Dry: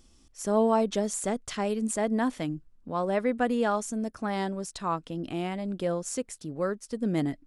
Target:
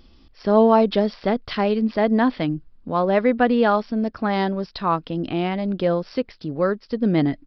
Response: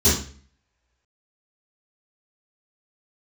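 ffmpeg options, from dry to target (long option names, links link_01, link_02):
-af "aresample=11025,aresample=44100,volume=8.5dB"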